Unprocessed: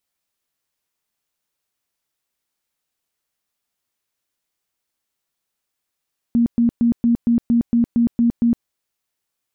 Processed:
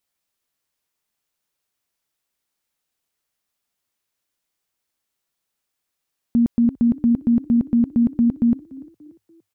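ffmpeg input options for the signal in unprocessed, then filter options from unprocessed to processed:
-f lavfi -i "aevalsrc='0.251*sin(2*PI*235*mod(t,0.23))*lt(mod(t,0.23),26/235)':d=2.3:s=44100"
-filter_complex "[0:a]asplit=4[a][b][c][d];[b]adelay=290,afreqshift=32,volume=-21dB[e];[c]adelay=580,afreqshift=64,volume=-28.5dB[f];[d]adelay=870,afreqshift=96,volume=-36.1dB[g];[a][e][f][g]amix=inputs=4:normalize=0"

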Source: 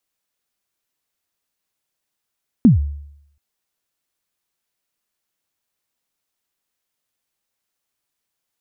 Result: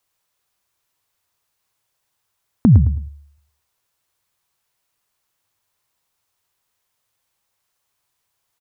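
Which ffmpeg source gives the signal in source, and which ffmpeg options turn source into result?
-f lavfi -i "aevalsrc='0.631*pow(10,-3*t/0.75)*sin(2*PI*(270*0.134/log(72/270)*(exp(log(72/270)*min(t,0.134)/0.134)-1)+72*max(t-0.134,0)))':d=0.73:s=44100"
-filter_complex "[0:a]equalizer=f=100:t=o:w=0.67:g=8,equalizer=f=250:t=o:w=0.67:g=-6,equalizer=f=1k:t=o:w=0.67:g=5,asplit=2[a][b];[b]acompressor=threshold=-22dB:ratio=6,volume=-2dB[c];[a][c]amix=inputs=2:normalize=0,aecho=1:1:108|216|324:0.316|0.0759|0.0182"

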